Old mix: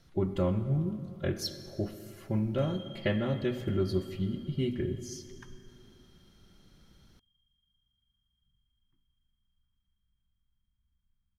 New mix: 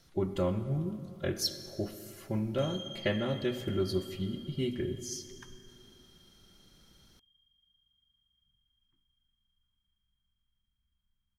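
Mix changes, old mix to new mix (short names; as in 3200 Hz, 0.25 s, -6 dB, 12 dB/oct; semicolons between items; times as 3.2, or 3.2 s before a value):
background: remove air absorption 220 m; master: add tone controls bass -4 dB, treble +6 dB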